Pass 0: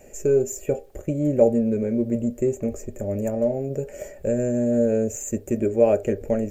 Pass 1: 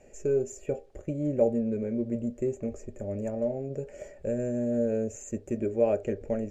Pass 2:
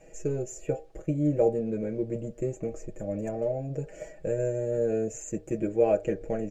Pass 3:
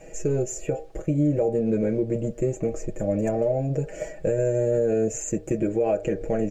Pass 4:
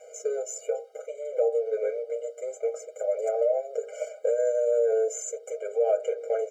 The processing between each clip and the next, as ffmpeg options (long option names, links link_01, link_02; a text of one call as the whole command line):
ffmpeg -i in.wav -af "lowpass=6200,volume=-7dB" out.wav
ffmpeg -i in.wav -af "aecho=1:1:6.2:0.93" out.wav
ffmpeg -i in.wav -af "alimiter=limit=-23dB:level=0:latency=1:release=116,volume=8.5dB" out.wav
ffmpeg -i in.wav -af "afftfilt=real='re*eq(mod(floor(b*sr/1024/400),2),1)':imag='im*eq(mod(floor(b*sr/1024/400),2),1)':win_size=1024:overlap=0.75" out.wav